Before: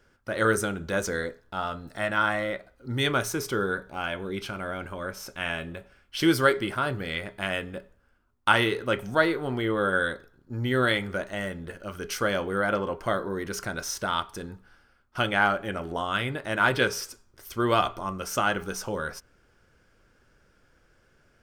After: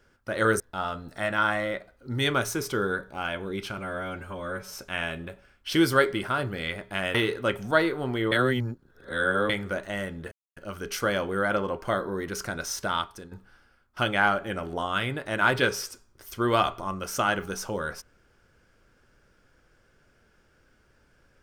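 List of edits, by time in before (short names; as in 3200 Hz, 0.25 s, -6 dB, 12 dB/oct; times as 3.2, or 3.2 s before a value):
0.6–1.39 cut
4.57–5.2 stretch 1.5×
7.62–8.58 cut
9.75–10.93 reverse
11.75 insert silence 0.25 s
14.15–14.5 fade out, to -11 dB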